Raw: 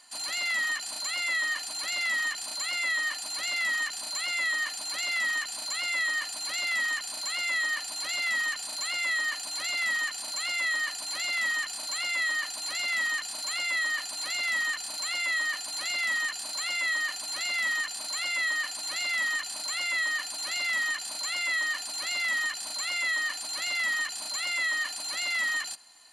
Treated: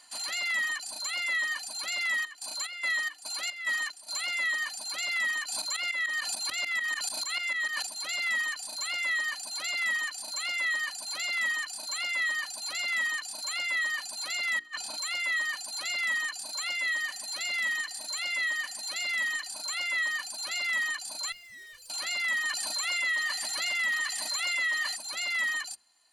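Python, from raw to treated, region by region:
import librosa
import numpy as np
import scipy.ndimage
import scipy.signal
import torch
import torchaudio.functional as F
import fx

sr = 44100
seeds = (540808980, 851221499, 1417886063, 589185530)

y = fx.chain(x, sr, fx.highpass(hz=200.0, slope=12),
    fx.chopper(hz=2.4, depth_pct=60, duty_pct=60), at=(2.0, 4.2))
y = fx.chain(y, sr, fx.tremolo_shape(shape='saw_up', hz=6.8, depth_pct=85),
    fx.env_flatten(amount_pct=70), at=(5.47, 7.87))
y = fx.chain(y, sr, fx.high_shelf(hz=7300.0, db=-9.0),
    fx.over_compress(threshold_db=-35.0, ratio=-0.5), at=(14.59, 14.99))
y = fx.chain(y, sr, fx.peak_eq(hz=1200.0, db=-3.5, octaves=0.69),
    fx.echo_feedback(ms=111, feedback_pct=45, wet_db=-14.0), at=(16.72, 19.49))
y = fx.chain(y, sr, fx.tone_stack(knobs='5-5-5'),
    fx.tube_stage(drive_db=43.0, bias=0.7), at=(21.32, 21.9))
y = fx.chain(y, sr, fx.echo_thinned(ms=133, feedback_pct=66, hz=970.0, wet_db=-8.0),
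    fx.env_flatten(amount_pct=50), at=(22.45, 24.96))
y = fx.dereverb_blind(y, sr, rt60_s=1.6)
y = fx.hum_notches(y, sr, base_hz=60, count=8)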